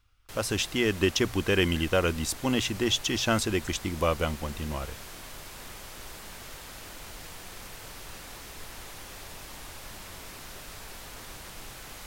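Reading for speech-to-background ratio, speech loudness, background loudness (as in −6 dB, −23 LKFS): 15.0 dB, −27.5 LKFS, −42.5 LKFS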